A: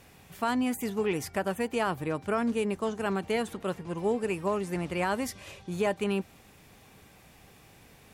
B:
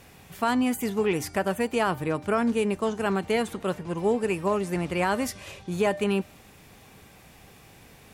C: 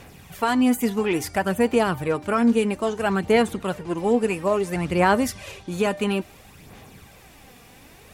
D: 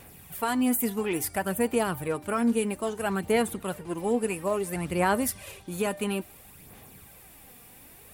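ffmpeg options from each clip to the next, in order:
ffmpeg -i in.wav -af "bandreject=frequency=300.3:width_type=h:width=4,bandreject=frequency=600.6:width_type=h:width=4,bandreject=frequency=900.9:width_type=h:width=4,bandreject=frequency=1201.2:width_type=h:width=4,bandreject=frequency=1501.5:width_type=h:width=4,bandreject=frequency=1801.8:width_type=h:width=4,bandreject=frequency=2102.1:width_type=h:width=4,bandreject=frequency=2402.4:width_type=h:width=4,bandreject=frequency=2702.7:width_type=h:width=4,bandreject=frequency=3003:width_type=h:width=4,bandreject=frequency=3303.3:width_type=h:width=4,bandreject=frequency=3603.6:width_type=h:width=4,bandreject=frequency=3903.9:width_type=h:width=4,bandreject=frequency=4204.2:width_type=h:width=4,bandreject=frequency=4504.5:width_type=h:width=4,bandreject=frequency=4804.8:width_type=h:width=4,bandreject=frequency=5105.1:width_type=h:width=4,bandreject=frequency=5405.4:width_type=h:width=4,bandreject=frequency=5705.7:width_type=h:width=4,bandreject=frequency=6006:width_type=h:width=4,bandreject=frequency=6306.3:width_type=h:width=4,bandreject=frequency=6606.6:width_type=h:width=4,bandreject=frequency=6906.9:width_type=h:width=4,bandreject=frequency=7207.2:width_type=h:width=4,bandreject=frequency=7507.5:width_type=h:width=4,bandreject=frequency=7807.8:width_type=h:width=4,bandreject=frequency=8108.1:width_type=h:width=4,bandreject=frequency=8408.4:width_type=h:width=4,bandreject=frequency=8708.7:width_type=h:width=4,bandreject=frequency=9009:width_type=h:width=4,bandreject=frequency=9309.3:width_type=h:width=4,bandreject=frequency=9609.6:width_type=h:width=4,bandreject=frequency=9909.9:width_type=h:width=4,bandreject=frequency=10210.2:width_type=h:width=4,volume=4dB" out.wav
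ffmpeg -i in.wav -af "aphaser=in_gain=1:out_gain=1:delay=4.2:decay=0.44:speed=0.59:type=sinusoidal,volume=2.5dB" out.wav
ffmpeg -i in.wav -af "aexciter=amount=5:drive=2.4:freq=8400,volume=-6dB" out.wav

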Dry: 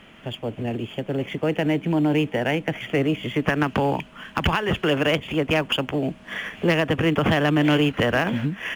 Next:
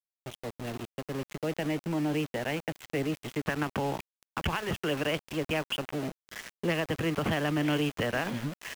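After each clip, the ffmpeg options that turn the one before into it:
ffmpeg -i in.wav -af "aeval=exprs='val(0)*gte(abs(val(0)),0.0447)':channel_layout=same,volume=-9dB" out.wav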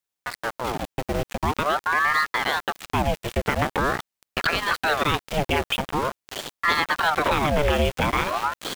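ffmpeg -i in.wav -filter_complex "[0:a]asplit=2[link_01][link_02];[link_02]alimiter=level_in=2dB:limit=-24dB:level=0:latency=1:release=193,volume=-2dB,volume=-2.5dB[link_03];[link_01][link_03]amix=inputs=2:normalize=0,aeval=exprs='val(0)*sin(2*PI*880*n/s+880*0.75/0.45*sin(2*PI*0.45*n/s))':channel_layout=same,volume=7.5dB" out.wav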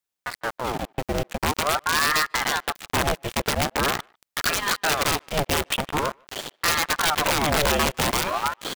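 ffmpeg -i in.wav -filter_complex "[0:a]aeval=exprs='(mod(4.73*val(0)+1,2)-1)/4.73':channel_layout=same,asplit=2[link_01][link_02];[link_02]adelay=150,highpass=300,lowpass=3400,asoftclip=type=hard:threshold=-22dB,volume=-29dB[link_03];[link_01][link_03]amix=inputs=2:normalize=0" out.wav

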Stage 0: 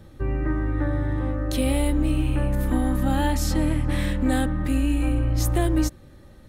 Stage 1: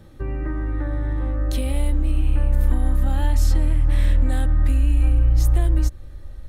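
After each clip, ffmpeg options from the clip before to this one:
ffmpeg -i in.wav -af "acompressor=threshold=-23dB:ratio=6,asubboost=boost=10.5:cutoff=57" out.wav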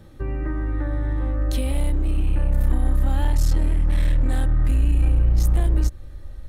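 ffmpeg -i in.wav -af "aeval=exprs='clip(val(0),-1,0.168)':channel_layout=same" out.wav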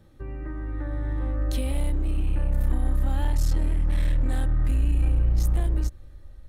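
ffmpeg -i in.wav -af "dynaudnorm=framelen=200:gausssize=9:maxgain=5.5dB,volume=-8.5dB" out.wav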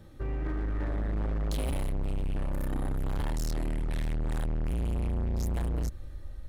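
ffmpeg -i in.wav -af "volume=31.5dB,asoftclip=hard,volume=-31.5dB,volume=3.5dB" out.wav

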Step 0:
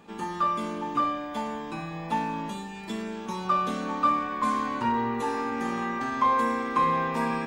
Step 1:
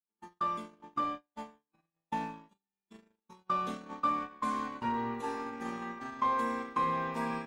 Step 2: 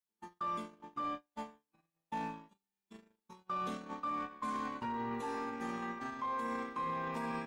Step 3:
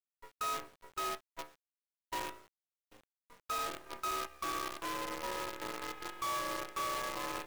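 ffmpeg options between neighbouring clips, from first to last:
ffmpeg -i in.wav -af "agate=range=-51dB:threshold=-29dB:ratio=16:detection=peak,volume=-7dB" out.wav
ffmpeg -i in.wav -af "alimiter=level_in=6.5dB:limit=-24dB:level=0:latency=1:release=11,volume=-6.5dB" out.wav
ffmpeg -i in.wav -af "highpass=frequency=270:width_type=q:width=0.5412,highpass=frequency=270:width_type=q:width=1.307,lowpass=frequency=3000:width_type=q:width=0.5176,lowpass=frequency=3000:width_type=q:width=0.7071,lowpass=frequency=3000:width_type=q:width=1.932,afreqshift=85,acrusher=bits=7:dc=4:mix=0:aa=0.000001" out.wav

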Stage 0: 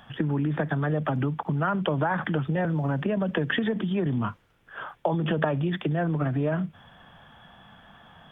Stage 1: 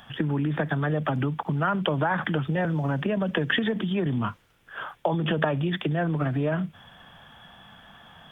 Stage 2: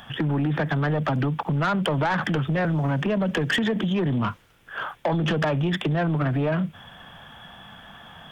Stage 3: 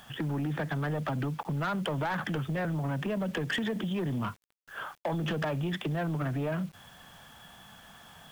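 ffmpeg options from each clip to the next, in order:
ffmpeg -i in.wav -af "highshelf=frequency=2600:gain=8" out.wav
ffmpeg -i in.wav -af "asoftclip=type=tanh:threshold=-22.5dB,volume=5dB" out.wav
ffmpeg -i in.wav -af "acrusher=bits=7:mix=0:aa=0.000001,volume=-8dB" out.wav

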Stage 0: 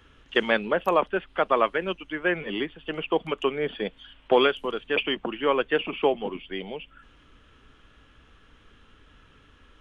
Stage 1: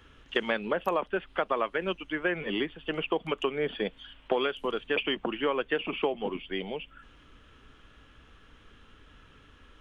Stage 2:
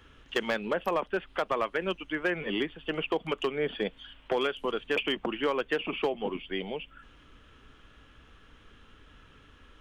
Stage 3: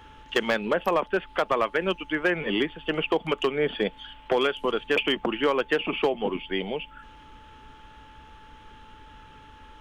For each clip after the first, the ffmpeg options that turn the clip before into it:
ffmpeg -i in.wav -af "acompressor=threshold=-24dB:ratio=6" out.wav
ffmpeg -i in.wav -af "asoftclip=type=hard:threshold=-20dB" out.wav
ffmpeg -i in.wav -af "aeval=exprs='val(0)+0.00178*sin(2*PI*870*n/s)':channel_layout=same,volume=5dB" out.wav

